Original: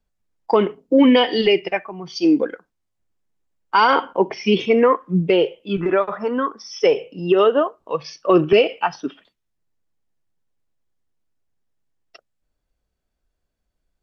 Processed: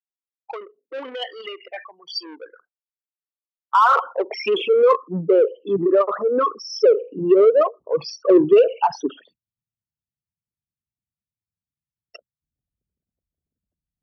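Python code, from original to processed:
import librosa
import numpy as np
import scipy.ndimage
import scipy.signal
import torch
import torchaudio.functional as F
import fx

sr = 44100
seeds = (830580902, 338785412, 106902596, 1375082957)

p1 = fx.envelope_sharpen(x, sr, power=3.0)
p2 = 10.0 ** (-18.5 / 20.0) * np.tanh(p1 / 10.0 ** (-18.5 / 20.0))
p3 = p1 + (p2 * 10.0 ** (-6.0 / 20.0))
y = fx.filter_sweep_highpass(p3, sr, from_hz=1500.0, to_hz=120.0, start_s=3.04, end_s=6.48, q=0.72)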